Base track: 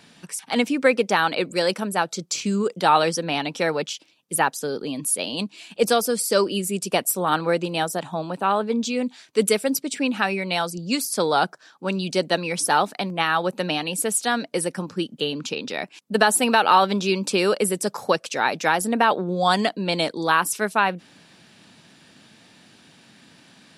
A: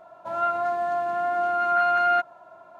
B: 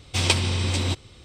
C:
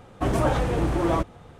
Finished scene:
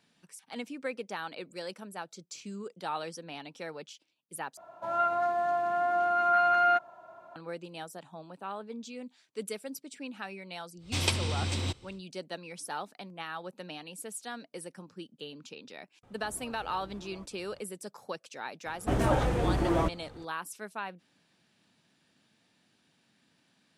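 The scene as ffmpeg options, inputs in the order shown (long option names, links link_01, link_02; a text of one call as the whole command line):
ffmpeg -i bed.wav -i cue0.wav -i cue1.wav -i cue2.wav -filter_complex "[3:a]asplit=2[link_01][link_02];[0:a]volume=-18dB[link_03];[link_01]acompressor=threshold=-36dB:ratio=6:attack=3.2:release=140:knee=1:detection=peak[link_04];[link_02]bandreject=frequency=1100:width=19[link_05];[link_03]asplit=2[link_06][link_07];[link_06]atrim=end=4.574[link_08];[1:a]atrim=end=2.79,asetpts=PTS-STARTPTS,volume=-3dB[link_09];[link_07]atrim=start=7.356[link_10];[2:a]atrim=end=1.24,asetpts=PTS-STARTPTS,volume=-7.5dB,afade=type=in:duration=0.1,afade=type=out:start_time=1.14:duration=0.1,adelay=10780[link_11];[link_04]atrim=end=1.59,asetpts=PTS-STARTPTS,volume=-12.5dB,afade=type=in:duration=0.004:curve=hsin,afade=type=out:start_time=1.586:duration=0.004:curve=hsin,adelay=16030[link_12];[link_05]atrim=end=1.59,asetpts=PTS-STARTPTS,volume=-4dB,afade=type=in:duration=0.004:curve=hsin,afade=type=out:start_time=1.586:duration=0.004:curve=hsin,adelay=18660[link_13];[link_08][link_09]acrossfade=duration=0.004:curve1=hsin:curve2=hsin[link_14];[link_14][link_10]acrossfade=duration=0.004:curve1=hsin:curve2=hsin[link_15];[link_15][link_11][link_12][link_13]amix=inputs=4:normalize=0" out.wav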